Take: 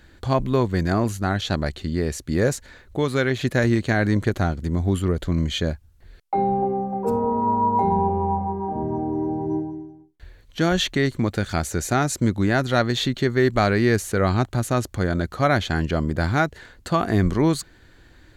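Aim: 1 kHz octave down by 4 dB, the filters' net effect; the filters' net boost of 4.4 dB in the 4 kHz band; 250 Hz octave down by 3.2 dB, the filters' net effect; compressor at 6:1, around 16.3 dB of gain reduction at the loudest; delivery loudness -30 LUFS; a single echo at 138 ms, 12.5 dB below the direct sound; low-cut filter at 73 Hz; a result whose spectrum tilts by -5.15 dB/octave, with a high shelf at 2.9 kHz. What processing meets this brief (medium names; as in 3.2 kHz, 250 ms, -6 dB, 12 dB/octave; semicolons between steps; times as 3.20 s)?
high-pass 73 Hz; peaking EQ 250 Hz -4 dB; peaking EQ 1 kHz -5 dB; treble shelf 2.9 kHz -4 dB; peaking EQ 4 kHz +8.5 dB; compression 6:1, threshold -35 dBFS; delay 138 ms -12.5 dB; trim +8 dB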